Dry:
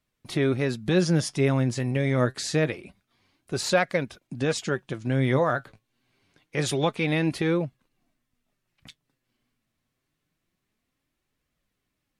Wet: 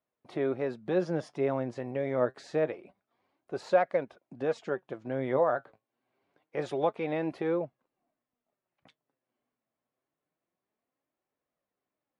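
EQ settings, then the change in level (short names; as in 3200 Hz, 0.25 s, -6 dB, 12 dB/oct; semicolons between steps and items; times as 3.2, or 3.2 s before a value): band-pass 650 Hz, Q 1.3; 0.0 dB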